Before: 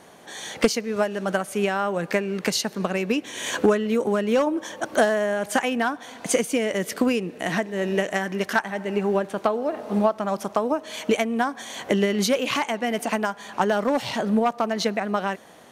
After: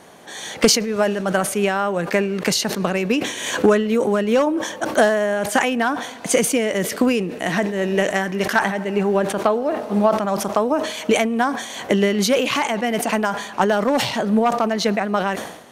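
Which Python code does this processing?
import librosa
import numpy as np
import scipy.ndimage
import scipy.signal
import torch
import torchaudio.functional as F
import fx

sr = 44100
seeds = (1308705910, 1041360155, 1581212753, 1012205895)

y = fx.sustainer(x, sr, db_per_s=70.0)
y = y * librosa.db_to_amplitude(3.5)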